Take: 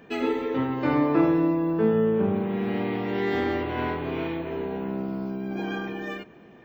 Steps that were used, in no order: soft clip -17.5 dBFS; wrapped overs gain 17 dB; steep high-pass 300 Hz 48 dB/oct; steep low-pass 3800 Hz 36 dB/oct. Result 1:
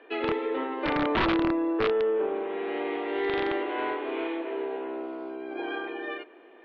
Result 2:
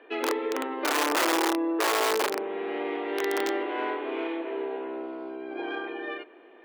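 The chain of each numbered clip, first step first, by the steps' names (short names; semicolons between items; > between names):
steep high-pass > wrapped overs > soft clip > steep low-pass; steep low-pass > wrapped overs > soft clip > steep high-pass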